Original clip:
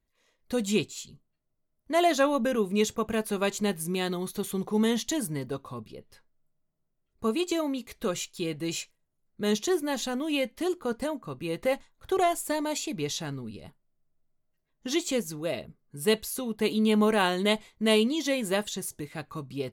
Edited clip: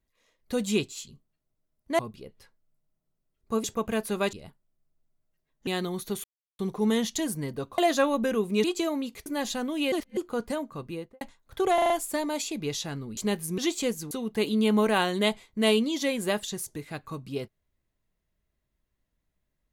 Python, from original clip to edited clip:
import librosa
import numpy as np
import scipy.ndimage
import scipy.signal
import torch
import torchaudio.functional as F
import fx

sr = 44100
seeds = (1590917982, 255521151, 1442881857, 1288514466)

y = fx.studio_fade_out(x, sr, start_s=11.34, length_s=0.39)
y = fx.edit(y, sr, fx.swap(start_s=1.99, length_s=0.86, other_s=5.71, other_length_s=1.65),
    fx.swap(start_s=3.54, length_s=0.41, other_s=13.53, other_length_s=1.34),
    fx.insert_silence(at_s=4.52, length_s=0.35),
    fx.cut(start_s=7.98, length_s=1.8),
    fx.reverse_span(start_s=10.44, length_s=0.25),
    fx.stutter(start_s=12.26, slice_s=0.04, count=5),
    fx.cut(start_s=15.4, length_s=0.95), tone=tone)